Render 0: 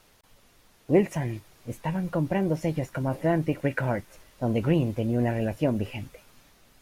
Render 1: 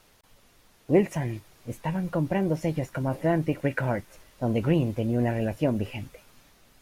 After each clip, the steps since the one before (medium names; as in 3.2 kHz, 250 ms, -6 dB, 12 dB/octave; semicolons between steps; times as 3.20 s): no audible change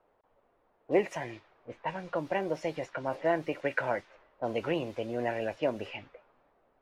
level-controlled noise filter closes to 740 Hz, open at -22.5 dBFS; three-band isolator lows -18 dB, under 390 Hz, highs -15 dB, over 6.4 kHz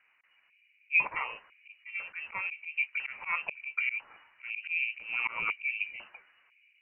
LFO low-pass square 1 Hz 560–1900 Hz; slow attack 150 ms; frequency inversion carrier 2.9 kHz